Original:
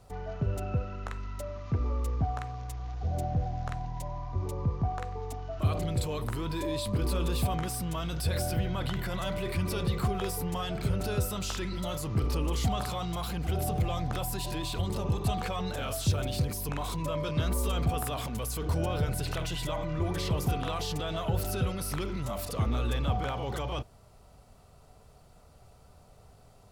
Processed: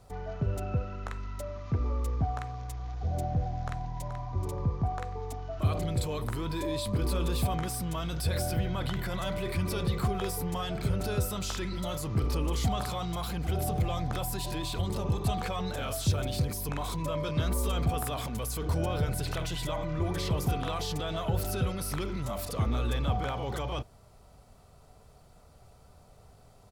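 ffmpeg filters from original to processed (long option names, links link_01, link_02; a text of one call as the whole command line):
ffmpeg -i in.wav -filter_complex "[0:a]asplit=2[link_01][link_02];[link_02]afade=type=in:start_time=3.6:duration=0.01,afade=type=out:start_time=4.24:duration=0.01,aecho=0:1:430|860|1290:0.354813|0.0709627|0.0141925[link_03];[link_01][link_03]amix=inputs=2:normalize=0,bandreject=frequency=2800:width=21" out.wav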